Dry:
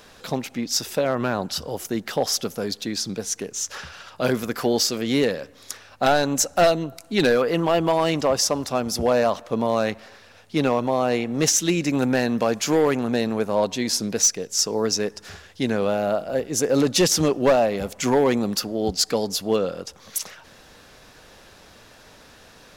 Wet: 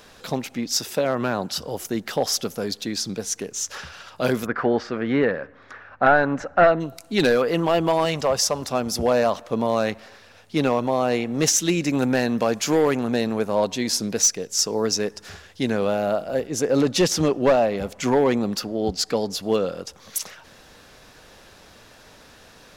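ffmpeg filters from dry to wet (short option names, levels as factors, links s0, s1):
-filter_complex "[0:a]asettb=1/sr,asplit=3[s0][s1][s2];[s0]atrim=end=0.724[s3];[s1]atrim=start=0.72:end=1.67,asetpts=PTS-STARTPTS,afade=t=in:d=0.004:c=qsin,afade=t=out:st=0.946:d=0.004:c=qsin,highpass=93[s4];[s2]atrim=start=1.666[s5];[s3][s4]acrossfade=d=0.004:c1=hsin:c2=qsin[s6];[s6][s5]acrossfade=d=0.004:c1=qsin:c2=hsin,asplit=3[s7][s8][s9];[s7]afade=t=out:st=4.45:d=0.02[s10];[s8]lowpass=f=1600:t=q:w=2.2,afade=t=in:st=4.45:d=0.02,afade=t=out:st=6.79:d=0.02[s11];[s9]afade=t=in:st=6.79:d=0.02[s12];[s10][s11][s12]amix=inputs=3:normalize=0,asettb=1/sr,asplit=3[s13][s14][s15];[s13]atrim=end=8.054[s16];[s14]atrim=start=8.05:end=8.62,asetpts=PTS-STARTPTS,afade=t=in:d=0.004:c=qsin,afade=t=out:st=0.566:d=0.004:c=qsin,equalizer=f=300:w=3.5:g=-10[s17];[s15]atrim=start=8.616[s18];[s16][s17]acrossfade=d=0.004:c1=hsin:c2=qsin[s19];[s19][s18]acrossfade=d=0.004:c1=qsin:c2=hsin,asettb=1/sr,asplit=3[s20][s21][s22];[s20]atrim=end=16.474[s23];[s21]atrim=start=16.47:end=19.43,asetpts=PTS-STARTPTS,afade=t=in:d=0.004:c=qsin,afade=t=out:st=2.956:d=0.004:c=qsin,highshelf=f=6000:g=-8[s24];[s22]atrim=start=19.426[s25];[s23][s24]acrossfade=d=0.004:c1=hsin:c2=qsin[s26];[s26][s25]acrossfade=d=0.004:c1=qsin:c2=hsin"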